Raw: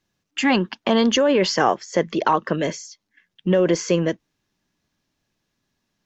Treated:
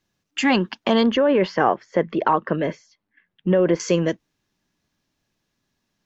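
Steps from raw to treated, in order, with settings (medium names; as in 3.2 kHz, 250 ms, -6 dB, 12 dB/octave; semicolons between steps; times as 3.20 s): 1.03–3.80 s: low-pass 2.2 kHz 12 dB/octave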